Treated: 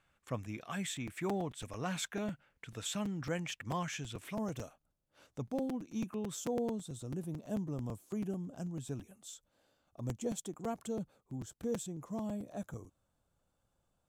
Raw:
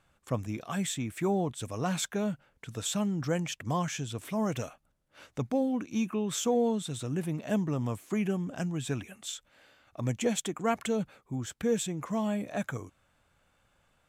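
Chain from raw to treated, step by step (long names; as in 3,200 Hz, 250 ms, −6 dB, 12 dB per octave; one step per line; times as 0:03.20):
parametric band 2,100 Hz +5.5 dB 1.5 octaves, from 0:04.35 −6.5 dB, from 0:06.35 −14.5 dB
regular buffer underruns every 0.11 s, samples 256, repeat, from 0:00.96
level −7.5 dB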